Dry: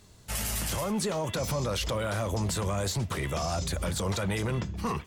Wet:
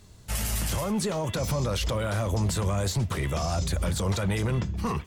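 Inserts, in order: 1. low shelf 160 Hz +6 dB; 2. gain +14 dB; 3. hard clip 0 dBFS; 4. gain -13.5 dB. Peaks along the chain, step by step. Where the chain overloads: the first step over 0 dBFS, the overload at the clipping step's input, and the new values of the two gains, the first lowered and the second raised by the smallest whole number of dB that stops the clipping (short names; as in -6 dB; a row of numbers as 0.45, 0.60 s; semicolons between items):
-18.5, -4.5, -4.5, -18.0 dBFS; no overload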